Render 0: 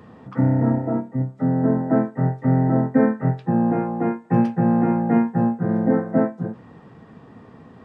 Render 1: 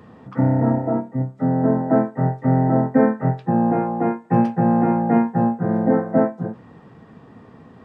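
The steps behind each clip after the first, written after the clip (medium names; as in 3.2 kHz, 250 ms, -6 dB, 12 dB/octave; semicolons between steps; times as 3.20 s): dynamic bell 750 Hz, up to +5 dB, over -36 dBFS, Q 1.1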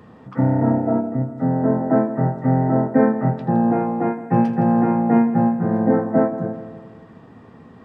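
multi-head delay 82 ms, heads first and second, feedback 58%, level -16 dB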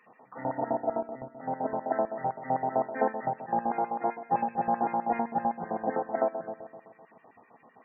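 LFO band-pass square 7.8 Hz 790–2300 Hz; loudest bins only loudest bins 64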